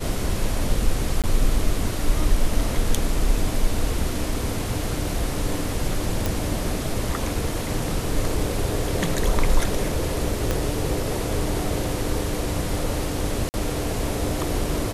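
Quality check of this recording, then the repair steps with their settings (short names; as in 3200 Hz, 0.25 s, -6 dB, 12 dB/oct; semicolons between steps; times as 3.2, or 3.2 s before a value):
1.22–1.24 gap 17 ms
6.26 pop
10.51 pop -8 dBFS
13.49–13.54 gap 49 ms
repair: de-click; interpolate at 1.22, 17 ms; interpolate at 13.49, 49 ms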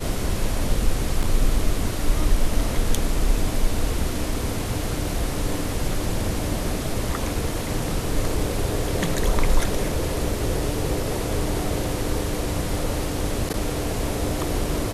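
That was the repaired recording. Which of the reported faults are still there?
10.51 pop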